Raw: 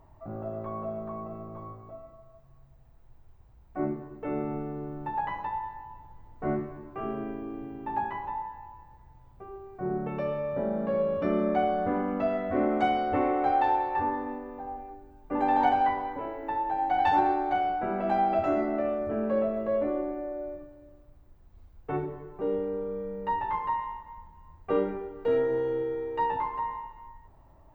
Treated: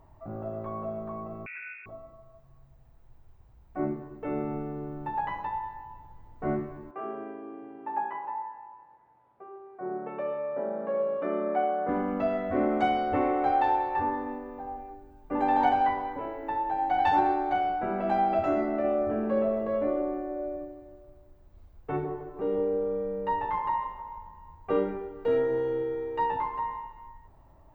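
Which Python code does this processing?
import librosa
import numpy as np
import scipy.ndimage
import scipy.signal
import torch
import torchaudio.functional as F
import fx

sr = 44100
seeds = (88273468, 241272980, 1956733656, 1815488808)

y = fx.freq_invert(x, sr, carrier_hz=2600, at=(1.46, 1.86))
y = fx.bandpass_edges(y, sr, low_hz=370.0, high_hz=2000.0, at=(6.91, 11.89))
y = fx.echo_wet_bandpass(y, sr, ms=157, feedback_pct=46, hz=620.0, wet_db=-6.0, at=(18.83, 24.7), fade=0.02)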